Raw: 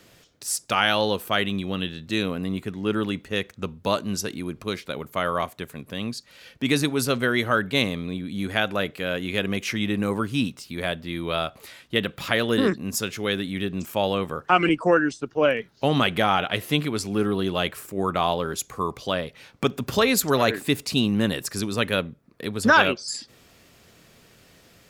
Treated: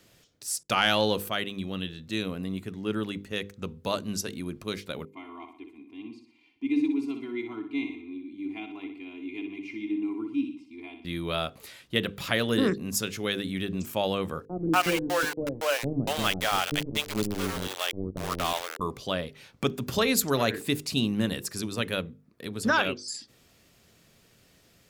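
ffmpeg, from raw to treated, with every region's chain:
-filter_complex "[0:a]asettb=1/sr,asplit=3[s0][s1][s2];[s0]atrim=end=0.634[s3];[s1]atrim=start=0.63:end=1.29,asetpts=PTS-STARTPTS,afade=t=in:d=0.004:c=qsin,afade=t=out:st=0.656:d=0.004:c=qsin,agate=range=0.0224:threshold=0.00501:ratio=3:release=100:detection=peak,acontrast=27[s4];[s2]atrim=start=1.286[s5];[s3][s4]acrossfade=d=0.004:c1=hsin:c2=qsin[s6];[s6][s5]acrossfade=d=0.004:c1=qsin:c2=hsin,asettb=1/sr,asplit=3[s7][s8][s9];[s7]atrim=end=5.054[s10];[s8]atrim=start=5.05:end=11.05,asetpts=PTS-STARTPTS,afade=t=in:d=0.004:c=qsin,afade=t=out:st=5.996:d=0.004:c=qsin,asplit=3[s11][s12][s13];[s11]bandpass=f=300:t=q:w=8,volume=1[s14];[s12]bandpass=f=870:t=q:w=8,volume=0.501[s15];[s13]bandpass=f=2240:t=q:w=8,volume=0.355[s16];[s14][s15][s16]amix=inputs=3:normalize=0,aecho=1:1:2.9:0.95,atrim=end_sample=264600,aecho=1:1:61|122|183|244|305:0.398|0.183|0.0842|0.0388|0.0178,atrim=end_sample=264600[s17];[s9]atrim=start=11.046[s18];[s10][s17]acrossfade=d=0.004:c1=hsin:c2=qsin[s19];[s19][s18]acrossfade=d=0.004:c1=qsin:c2=hsin,asettb=1/sr,asplit=3[s20][s21][s22];[s20]atrim=end=14.454[s23];[s21]atrim=start=14.45:end=18.81,asetpts=PTS-STARTPTS,afade=t=in:d=0.004:c=qsin,afade=t=out:st=4.356:d=0.004:c=qsin,lowshelf=f=95:g=-5,aeval=exprs='val(0)*gte(abs(val(0)),0.0668)':c=same,acrossover=split=470[s24][s25];[s25]adelay=240[s26];[s24][s26]amix=inputs=2:normalize=0,atrim=end_sample=192276[s27];[s22]atrim=start=18.806[s28];[s23][s27]acrossfade=d=0.004:c1=hsin:c2=qsin[s29];[s29][s28]acrossfade=d=0.004:c1=qsin:c2=hsin,equalizer=f=1100:w=0.42:g=-4,dynaudnorm=f=400:g=21:m=1.58,bandreject=f=50:t=h:w=6,bandreject=f=100:t=h:w=6,bandreject=f=150:t=h:w=6,bandreject=f=200:t=h:w=6,bandreject=f=250:t=h:w=6,bandreject=f=300:t=h:w=6,bandreject=f=350:t=h:w=6,bandreject=f=400:t=h:w=6,bandreject=f=450:t=h:w=6,bandreject=f=500:t=h:w=6,volume=0.631"

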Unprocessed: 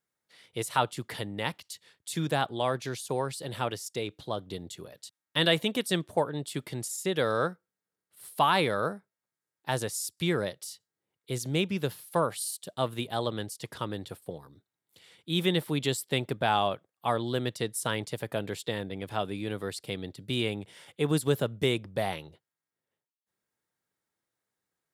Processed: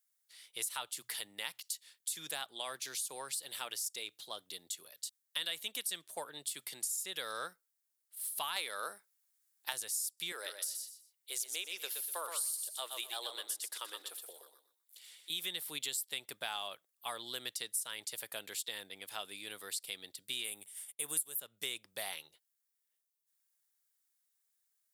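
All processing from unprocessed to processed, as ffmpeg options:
-filter_complex "[0:a]asettb=1/sr,asplit=3[s0][s1][s2];[s0]atrim=end=0.914[s3];[s1]atrim=start=0.91:end=6.94,asetpts=PTS-STARTPTS,afade=t=in:d=0.004:c=qsin,afade=t=out:st=6.026:d=0.004:c=qsin,highpass=90,bandreject=f=60:t=h:w=6,bandreject=f=120:t=h:w=6[s4];[s2]atrim=start=6.936[s5];[s3][s4]acrossfade=d=0.004:c1=hsin:c2=qsin[s6];[s6][s5]acrossfade=d=0.004:c1=qsin:c2=hsin,asettb=1/sr,asplit=3[s7][s8][s9];[s7]atrim=end=8.564[s10];[s8]atrim=start=8.56:end=9.73,asetpts=PTS-STARTPTS,afade=t=in:d=0.004:c=qsin,afade=t=out:st=1.166:d=0.004:c=qsin,highpass=300,acontrast=52[s11];[s9]atrim=start=9.726[s12];[s10][s11]acrossfade=d=0.004:c1=hsin:c2=qsin[s13];[s13][s12]acrossfade=d=0.004:c1=qsin:c2=hsin,asettb=1/sr,asplit=3[s14][s15][s16];[s14]atrim=end=10.324[s17];[s15]atrim=start=10.32:end=15.3,asetpts=PTS-STARTPTS,afade=t=in:d=0.004:c=qsin,afade=t=out:st=4.976:d=0.004:c=qsin,highpass=f=360:w=0.5412,highpass=f=360:w=1.3066,aecho=1:1:122|244|366:0.447|0.112|0.0279,atrim=end_sample=219618[s18];[s16]atrim=start=15.296[s19];[s17][s18]acrossfade=d=0.004:c1=hsin:c2=qsin[s20];[s20][s19]acrossfade=d=0.004:c1=qsin:c2=hsin,asettb=1/sr,asplit=3[s21][s22][s23];[s21]atrim=end=20.444[s24];[s22]atrim=start=20.44:end=21.4,asetpts=PTS-STARTPTS,afade=t=in:d=0.004:c=qsin,afade=t=out:st=0.956:d=0.004:c=qsin,bandreject=f=60:t=h:w=6,bandreject=f=120:t=h:w=6,bandreject=f=180:t=h:w=6,agate=range=0.0224:threshold=0.00447:ratio=3:release=100:detection=peak,highshelf=f=7100:t=q:w=1.5:g=11.5[s25];[s23]atrim=start=21.396[s26];[s24][s25]acrossfade=d=0.004:c1=hsin:c2=qsin[s27];[s27][s26]acrossfade=d=0.004:c1=qsin:c2=hsin,aderivative,acompressor=threshold=0.00794:ratio=4,volume=2.11"

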